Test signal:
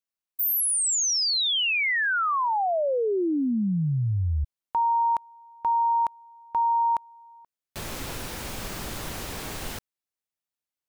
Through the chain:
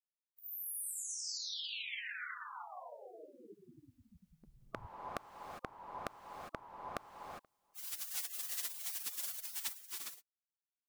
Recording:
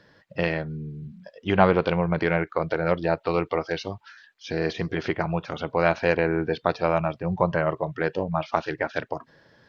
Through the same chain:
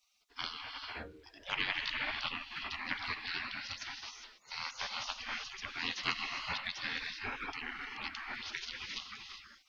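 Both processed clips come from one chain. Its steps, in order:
low-shelf EQ 130 Hz −2.5 dB
reverb whose tail is shaped and stops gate 430 ms rising, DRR 4 dB
gate on every frequency bin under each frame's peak −25 dB weak
level +4 dB

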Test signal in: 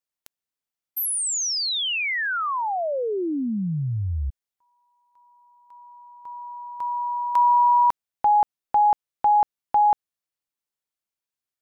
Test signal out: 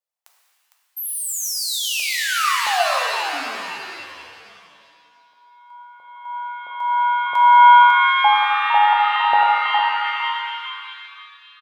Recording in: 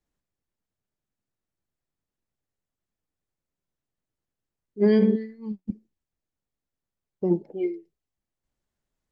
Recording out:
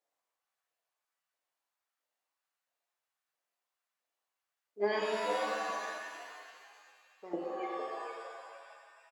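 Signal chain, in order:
auto-filter high-pass saw up 1.5 Hz 580–1,500 Hz
echo with shifted repeats 456 ms, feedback 34%, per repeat +100 Hz, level −7 dB
reverb with rising layers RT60 1.6 s, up +7 semitones, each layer −2 dB, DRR 1 dB
level −3.5 dB

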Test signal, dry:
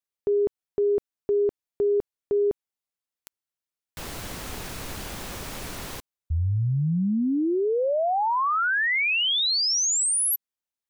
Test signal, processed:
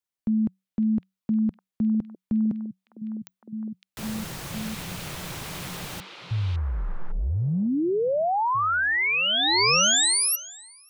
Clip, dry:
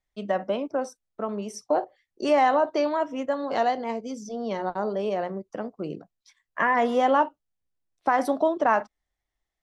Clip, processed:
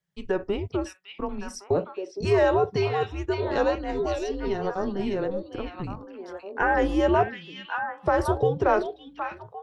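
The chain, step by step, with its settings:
parametric band 150 Hz −3.5 dB 1.3 octaves
frequency shifter −190 Hz
echo through a band-pass that steps 558 ms, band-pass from 3,000 Hz, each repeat −1.4 octaves, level −0.5 dB

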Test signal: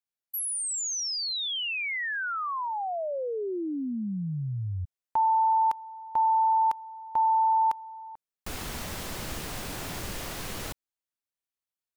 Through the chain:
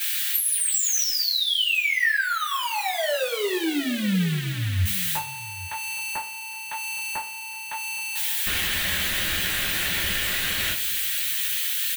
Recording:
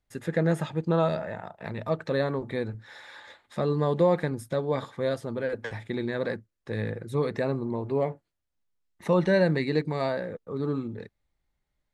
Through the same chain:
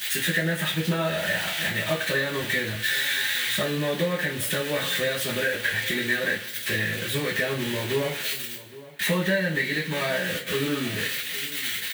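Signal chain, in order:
spike at every zero crossing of −24 dBFS
flat-topped bell 2,400 Hz +14 dB
downward compressor 20 to 1, threshold −27 dBFS
bit reduction 10 bits
slap from a distant wall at 140 metres, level −17 dB
coupled-rooms reverb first 0.27 s, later 1.7 s, from −21 dB, DRR −9.5 dB
level −4 dB

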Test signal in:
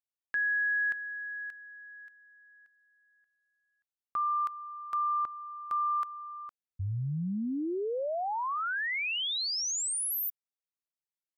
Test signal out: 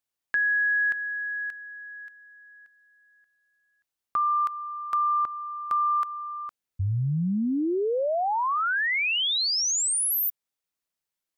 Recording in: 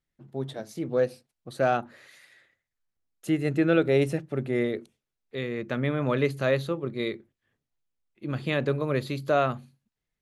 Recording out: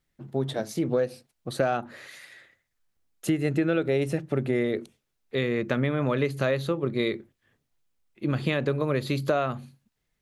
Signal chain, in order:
downward compressor 6 to 1, threshold −29 dBFS
level +7.5 dB

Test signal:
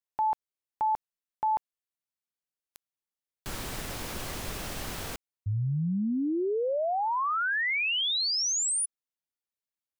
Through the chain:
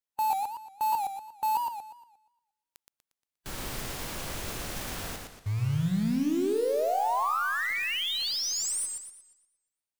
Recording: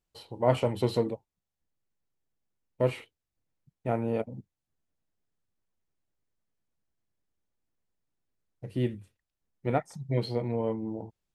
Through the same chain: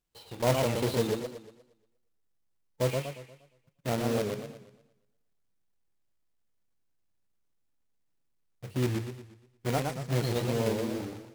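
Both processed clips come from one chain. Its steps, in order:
one scale factor per block 3 bits
harmonic and percussive parts rebalanced percussive −4 dB
feedback echo with a swinging delay time 118 ms, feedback 42%, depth 187 cents, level −4 dB

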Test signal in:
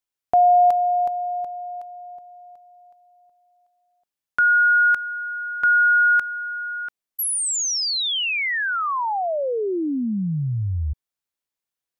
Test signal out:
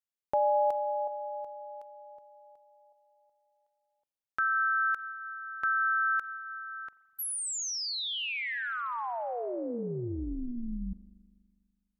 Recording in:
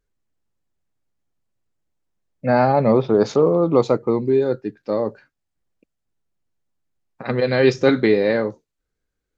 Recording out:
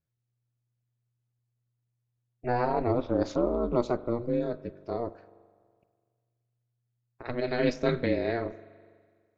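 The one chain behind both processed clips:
spring reverb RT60 1.8 s, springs 41 ms, chirp 35 ms, DRR 16.5 dB
ring modulation 120 Hz
level −8 dB

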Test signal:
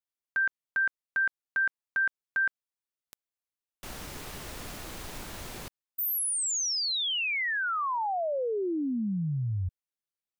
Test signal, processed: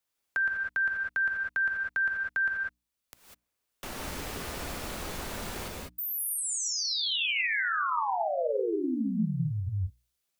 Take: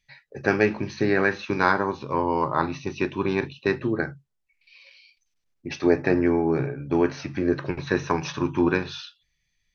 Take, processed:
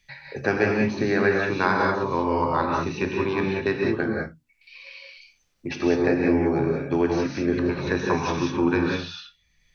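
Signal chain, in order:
mains-hum notches 60/120/180/240/300 Hz
reverb whose tail is shaped and stops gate 220 ms rising, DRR 0 dB
multiband upward and downward compressor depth 40%
level −2 dB

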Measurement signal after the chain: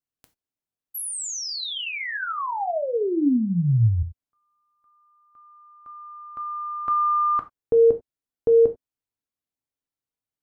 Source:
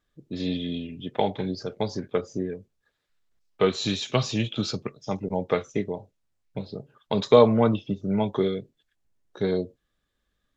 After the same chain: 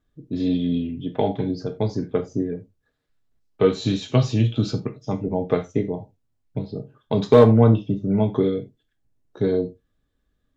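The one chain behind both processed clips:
drawn EQ curve 260 Hz 0 dB, 400 Hz −4 dB, 2,200 Hz −11 dB
gain into a clipping stage and back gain 12.5 dB
reverb whose tail is shaped and stops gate 110 ms falling, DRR 6 dB
level +6.5 dB

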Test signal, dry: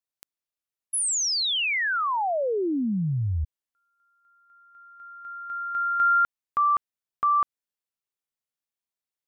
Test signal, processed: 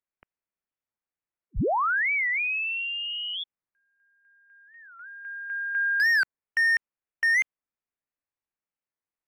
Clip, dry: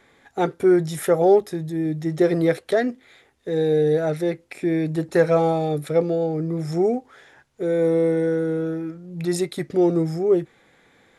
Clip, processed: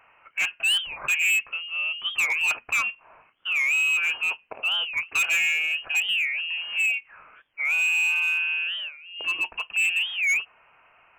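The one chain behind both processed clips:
low-shelf EQ 360 Hz −10 dB
voice inversion scrambler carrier 3,000 Hz
hard clipping −21 dBFS
wow of a warped record 45 rpm, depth 250 cents
level +1.5 dB

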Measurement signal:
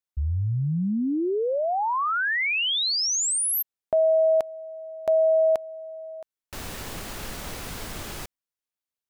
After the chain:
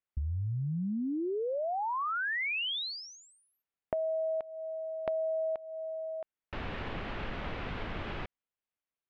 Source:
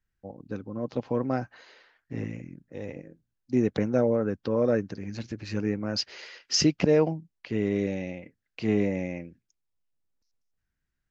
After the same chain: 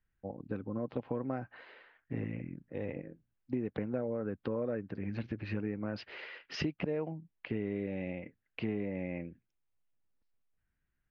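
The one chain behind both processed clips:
low-pass filter 3,000 Hz 24 dB per octave
downward compressor 6 to 1, threshold −32 dBFS

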